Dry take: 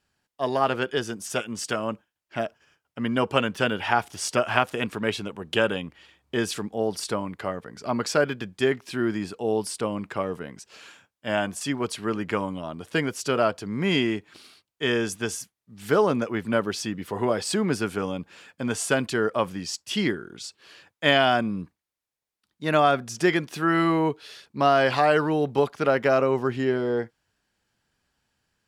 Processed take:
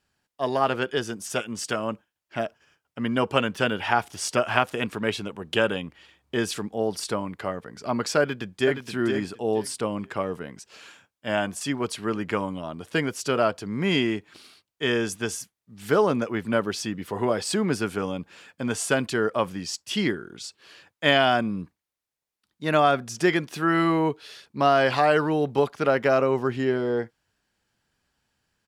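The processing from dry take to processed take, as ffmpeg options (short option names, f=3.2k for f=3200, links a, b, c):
-filter_complex "[0:a]asplit=2[a][b];[b]afade=t=in:st=8.2:d=0.01,afade=t=out:st=8.79:d=0.01,aecho=0:1:470|940|1410:0.473151|0.0946303|0.0189261[c];[a][c]amix=inputs=2:normalize=0"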